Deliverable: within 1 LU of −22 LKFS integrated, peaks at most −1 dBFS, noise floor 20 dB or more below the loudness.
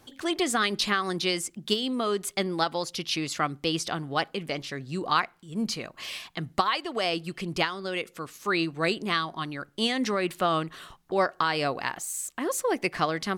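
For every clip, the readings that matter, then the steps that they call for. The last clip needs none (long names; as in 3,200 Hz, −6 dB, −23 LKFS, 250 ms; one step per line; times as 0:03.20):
integrated loudness −28.5 LKFS; sample peak −9.0 dBFS; target loudness −22.0 LKFS
→ level +6.5 dB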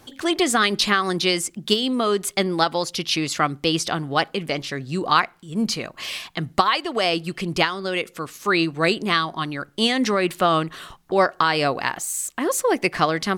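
integrated loudness −22.0 LKFS; sample peak −2.5 dBFS; background noise floor −53 dBFS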